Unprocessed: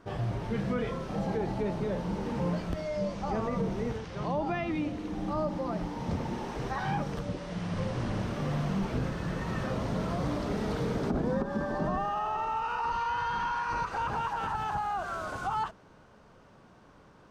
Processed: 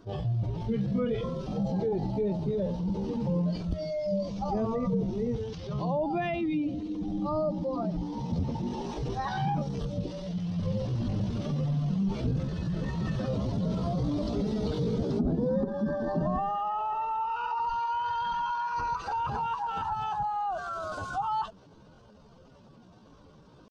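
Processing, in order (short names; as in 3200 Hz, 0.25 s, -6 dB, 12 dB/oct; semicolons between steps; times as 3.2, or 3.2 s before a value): spectral contrast raised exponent 1.6; tempo 0.73×; resonant high shelf 2600 Hz +13.5 dB, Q 1.5; gain +2.5 dB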